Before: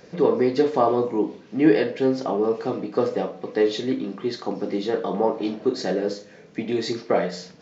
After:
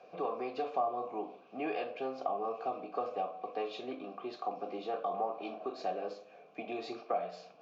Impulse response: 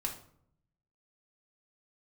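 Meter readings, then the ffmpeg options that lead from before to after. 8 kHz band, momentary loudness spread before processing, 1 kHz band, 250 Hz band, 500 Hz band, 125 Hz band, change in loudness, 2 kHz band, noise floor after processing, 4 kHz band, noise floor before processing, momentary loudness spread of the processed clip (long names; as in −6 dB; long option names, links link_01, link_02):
can't be measured, 9 LU, −6.0 dB, −21.0 dB, −15.5 dB, below −20 dB, −14.5 dB, −14.0 dB, −58 dBFS, −16.0 dB, −48 dBFS, 8 LU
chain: -filter_complex "[0:a]asplit=3[link_01][link_02][link_03];[link_01]bandpass=frequency=730:width_type=q:width=8,volume=0dB[link_04];[link_02]bandpass=frequency=1090:width_type=q:width=8,volume=-6dB[link_05];[link_03]bandpass=frequency=2440:width_type=q:width=8,volume=-9dB[link_06];[link_04][link_05][link_06]amix=inputs=3:normalize=0,acrossover=split=240|880[link_07][link_08][link_09];[link_07]acompressor=threshold=-54dB:ratio=4[link_10];[link_08]acompressor=threshold=-43dB:ratio=4[link_11];[link_09]acompressor=threshold=-42dB:ratio=4[link_12];[link_10][link_11][link_12]amix=inputs=3:normalize=0,volume=5dB"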